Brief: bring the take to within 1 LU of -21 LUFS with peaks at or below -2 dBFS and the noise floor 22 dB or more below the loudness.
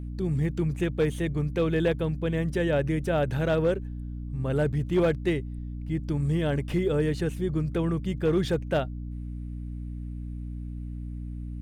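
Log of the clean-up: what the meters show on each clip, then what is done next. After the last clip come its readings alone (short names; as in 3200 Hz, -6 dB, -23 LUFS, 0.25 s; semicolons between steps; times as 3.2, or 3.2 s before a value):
clipped 0.4%; flat tops at -17.0 dBFS; hum 60 Hz; harmonics up to 300 Hz; hum level -33 dBFS; loudness -28.5 LUFS; peak -17.0 dBFS; loudness target -21.0 LUFS
-> clip repair -17 dBFS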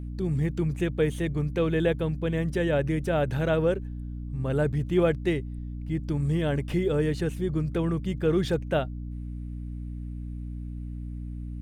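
clipped 0.0%; hum 60 Hz; harmonics up to 300 Hz; hum level -33 dBFS
-> notches 60/120/180/240/300 Hz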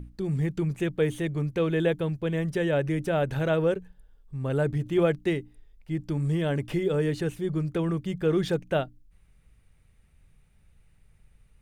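hum none; loudness -27.5 LUFS; peak -12.0 dBFS; loudness target -21.0 LUFS
-> gain +6.5 dB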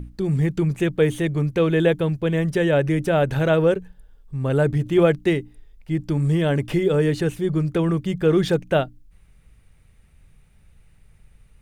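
loudness -21.0 LUFS; peak -5.5 dBFS; noise floor -54 dBFS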